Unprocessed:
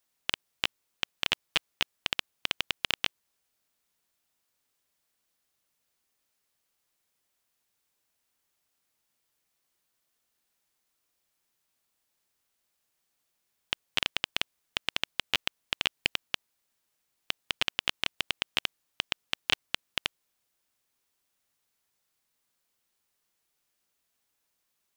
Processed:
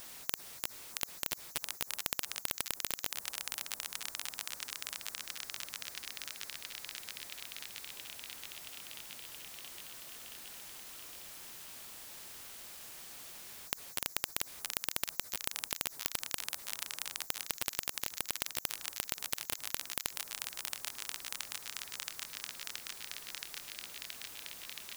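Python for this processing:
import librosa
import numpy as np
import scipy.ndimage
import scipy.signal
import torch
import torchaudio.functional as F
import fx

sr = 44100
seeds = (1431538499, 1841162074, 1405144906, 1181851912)

y = fx.echo_wet_highpass(x, sr, ms=674, feedback_pct=67, hz=2500.0, wet_db=-20.0)
y = 10.0 ** (-22.5 / 20.0) * np.tanh(y / 10.0 ** (-22.5 / 20.0))
y = fx.spectral_comp(y, sr, ratio=10.0)
y = y * librosa.db_to_amplitude(13.5)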